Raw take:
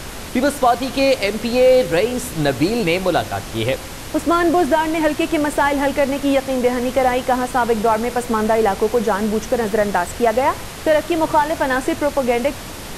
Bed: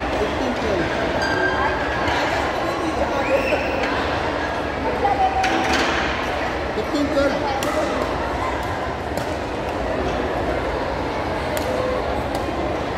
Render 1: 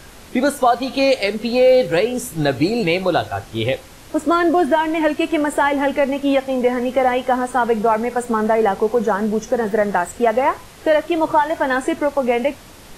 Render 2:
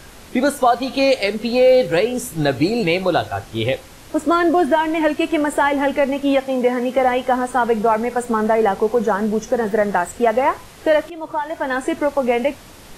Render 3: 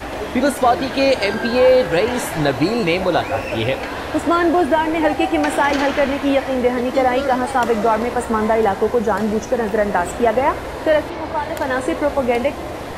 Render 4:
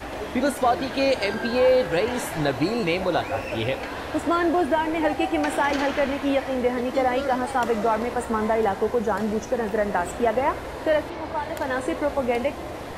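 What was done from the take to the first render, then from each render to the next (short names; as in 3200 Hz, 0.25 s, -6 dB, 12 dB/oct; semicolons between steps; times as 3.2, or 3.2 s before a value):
noise print and reduce 10 dB
6.44–6.98 HPF 110 Hz 24 dB/oct; 11.1–12.02 fade in, from -16 dB
add bed -5 dB
gain -6 dB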